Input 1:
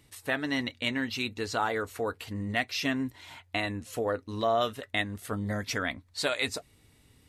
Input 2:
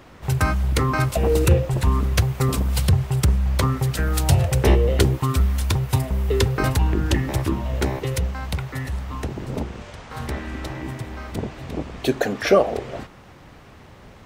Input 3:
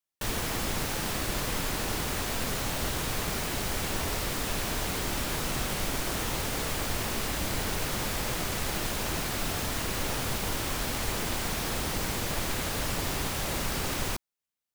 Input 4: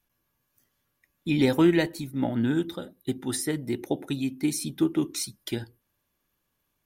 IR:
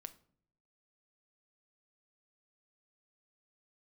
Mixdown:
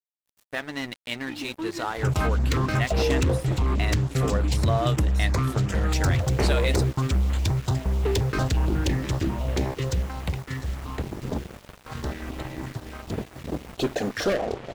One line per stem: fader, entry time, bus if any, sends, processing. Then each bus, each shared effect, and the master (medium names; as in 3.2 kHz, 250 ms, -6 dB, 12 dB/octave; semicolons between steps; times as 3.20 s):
+0.5 dB, 0.25 s, no send, none
-0.5 dB, 1.75 s, send -8 dB, elliptic low-pass 7.5 kHz; overload inside the chain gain 18.5 dB; step-sequenced notch 11 Hz 730–5500 Hz
-17.0 dB, 0.00 s, no send, auto duck -15 dB, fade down 0.25 s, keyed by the fourth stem
-13.5 dB, 0.00 s, no send, comb 3.2 ms, depth 65%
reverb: on, pre-delay 6 ms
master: crossover distortion -37.5 dBFS